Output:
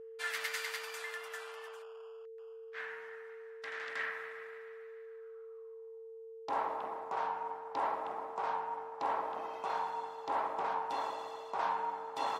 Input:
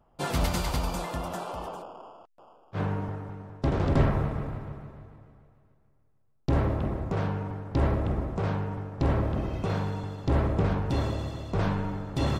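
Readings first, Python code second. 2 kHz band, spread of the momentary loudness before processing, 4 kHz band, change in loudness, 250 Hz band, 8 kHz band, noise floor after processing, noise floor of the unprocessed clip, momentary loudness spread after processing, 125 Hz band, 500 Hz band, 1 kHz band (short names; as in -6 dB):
0.0 dB, 13 LU, -5.5 dB, -9.0 dB, -25.5 dB, n/a, -50 dBFS, -65 dBFS, 14 LU, under -40 dB, -8.5 dB, +0.5 dB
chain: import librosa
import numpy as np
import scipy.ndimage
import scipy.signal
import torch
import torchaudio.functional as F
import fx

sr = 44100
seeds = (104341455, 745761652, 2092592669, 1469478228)

y = fx.filter_sweep_highpass(x, sr, from_hz=1800.0, to_hz=890.0, start_s=5.04, end_s=5.95, q=4.7)
y = fx.dynamic_eq(y, sr, hz=260.0, q=1.3, threshold_db=-50.0, ratio=4.0, max_db=5)
y = y + 10.0 ** (-39.0 / 20.0) * np.sin(2.0 * np.pi * 450.0 * np.arange(len(y)) / sr)
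y = F.gain(torch.from_numpy(y), -7.5).numpy()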